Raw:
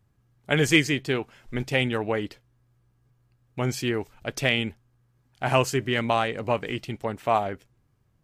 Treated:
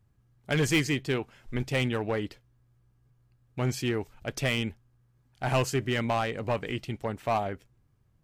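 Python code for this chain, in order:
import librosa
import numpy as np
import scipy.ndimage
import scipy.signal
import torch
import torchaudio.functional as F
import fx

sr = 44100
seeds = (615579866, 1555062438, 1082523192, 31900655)

p1 = 10.0 ** (-19.0 / 20.0) * (np.abs((x / 10.0 ** (-19.0 / 20.0) + 3.0) % 4.0 - 2.0) - 1.0)
p2 = x + (p1 * 10.0 ** (-4.0 / 20.0))
p3 = fx.low_shelf(p2, sr, hz=130.0, db=5.5)
y = p3 * 10.0 ** (-7.5 / 20.0)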